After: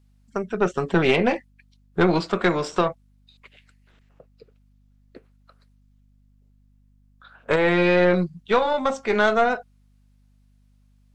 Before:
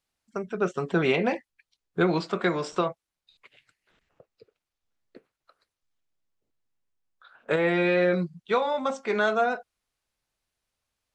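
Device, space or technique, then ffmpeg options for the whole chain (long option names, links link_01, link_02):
valve amplifier with mains hum: -af "aeval=exprs='(tanh(5.62*val(0)+0.55)-tanh(0.55))/5.62':channel_layout=same,aeval=exprs='val(0)+0.000631*(sin(2*PI*50*n/s)+sin(2*PI*2*50*n/s)/2+sin(2*PI*3*50*n/s)/3+sin(2*PI*4*50*n/s)/4+sin(2*PI*5*50*n/s)/5)':channel_layout=same,volume=7dB"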